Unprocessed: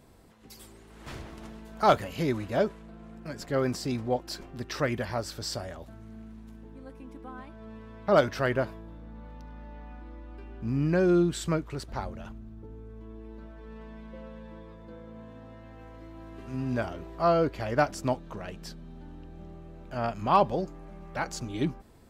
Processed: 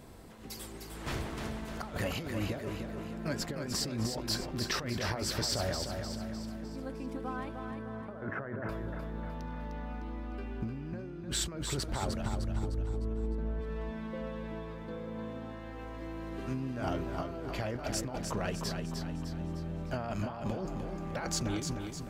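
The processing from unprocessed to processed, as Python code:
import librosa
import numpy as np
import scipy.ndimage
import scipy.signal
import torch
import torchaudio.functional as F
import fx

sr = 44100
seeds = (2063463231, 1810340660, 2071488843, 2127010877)

y = fx.tilt_eq(x, sr, slope=-2.5, at=(12.21, 13.59), fade=0.02)
y = fx.over_compress(y, sr, threshold_db=-36.0, ratio=-1.0)
y = 10.0 ** (-19.5 / 20.0) * np.tanh(y / 10.0 ** (-19.5 / 20.0))
y = fx.ellip_bandpass(y, sr, low_hz=110.0, high_hz=1700.0, order=3, stop_db=40, at=(7.71, 8.69))
y = fx.echo_feedback(y, sr, ms=304, feedback_pct=48, wet_db=-6.0)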